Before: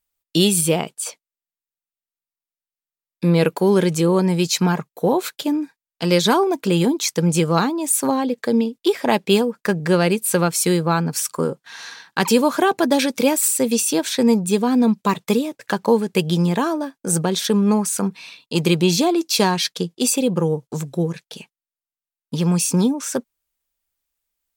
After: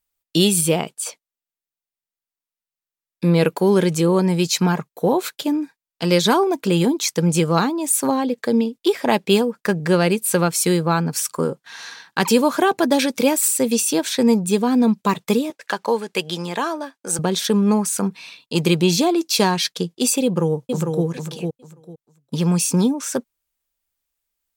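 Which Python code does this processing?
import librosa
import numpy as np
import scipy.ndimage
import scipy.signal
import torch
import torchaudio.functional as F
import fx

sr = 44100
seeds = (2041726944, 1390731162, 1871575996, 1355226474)

y = fx.weighting(x, sr, curve='A', at=(15.5, 17.19))
y = fx.echo_throw(y, sr, start_s=20.24, length_s=0.81, ms=450, feedback_pct=20, wet_db=-4.5)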